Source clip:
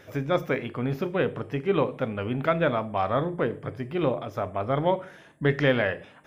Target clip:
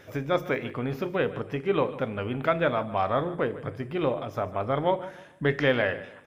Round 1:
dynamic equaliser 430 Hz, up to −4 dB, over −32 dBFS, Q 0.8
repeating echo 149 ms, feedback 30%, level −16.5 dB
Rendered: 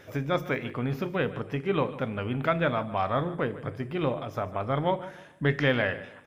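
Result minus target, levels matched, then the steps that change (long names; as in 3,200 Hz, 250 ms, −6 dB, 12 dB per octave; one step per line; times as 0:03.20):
125 Hz band +3.5 dB
change: dynamic equaliser 170 Hz, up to −4 dB, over −32 dBFS, Q 0.8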